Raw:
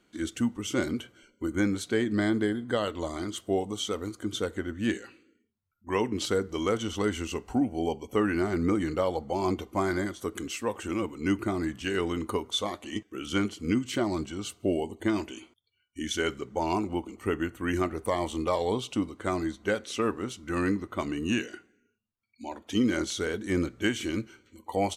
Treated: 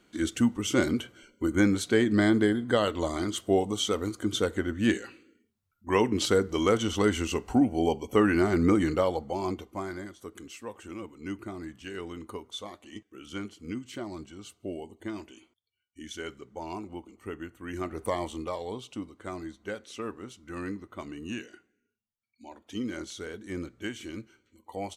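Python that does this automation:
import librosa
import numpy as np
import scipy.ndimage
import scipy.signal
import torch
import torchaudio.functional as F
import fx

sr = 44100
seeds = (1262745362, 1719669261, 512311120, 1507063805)

y = fx.gain(x, sr, db=fx.line((8.87, 3.5), (9.98, -9.5), (17.69, -9.5), (18.04, -0.5), (18.63, -8.5)))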